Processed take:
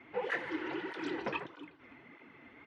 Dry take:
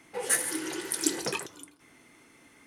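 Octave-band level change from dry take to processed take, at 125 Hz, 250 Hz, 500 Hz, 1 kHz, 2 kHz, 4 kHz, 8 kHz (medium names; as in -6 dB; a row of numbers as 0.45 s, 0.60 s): -4.5 dB, -4.0 dB, -2.5 dB, -0.5 dB, -2.5 dB, -12.0 dB, under -35 dB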